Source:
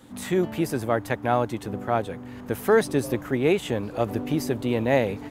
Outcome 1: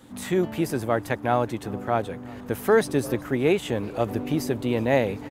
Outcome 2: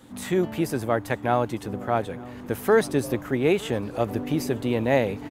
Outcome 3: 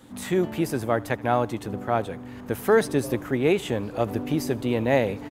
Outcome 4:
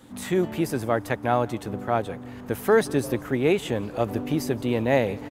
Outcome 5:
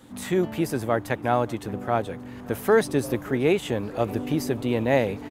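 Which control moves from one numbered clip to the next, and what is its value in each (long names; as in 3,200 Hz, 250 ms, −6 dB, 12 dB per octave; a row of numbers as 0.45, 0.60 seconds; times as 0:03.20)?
repeating echo, delay time: 371, 909, 78, 172, 579 milliseconds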